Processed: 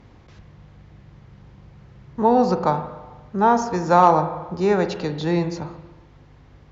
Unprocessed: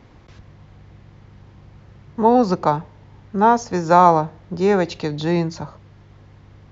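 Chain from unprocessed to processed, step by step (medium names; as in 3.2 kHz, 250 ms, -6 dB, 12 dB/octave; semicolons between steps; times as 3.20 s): hum 50 Hz, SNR 30 dB; spring tank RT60 1.2 s, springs 38/46 ms, chirp 65 ms, DRR 8.5 dB; Chebyshev shaper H 3 -22 dB, 5 -31 dB, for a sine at 0.5 dBFS; trim -1.5 dB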